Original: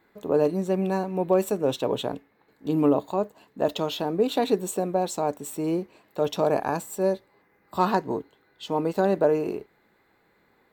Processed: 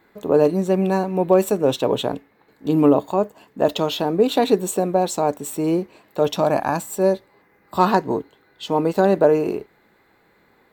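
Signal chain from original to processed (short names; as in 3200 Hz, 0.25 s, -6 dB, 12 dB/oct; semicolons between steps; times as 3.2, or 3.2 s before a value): 2.99–3.64 notch 4000 Hz, Q 10; 6.35–6.9 bell 430 Hz -12 dB 0.3 oct; gain +6 dB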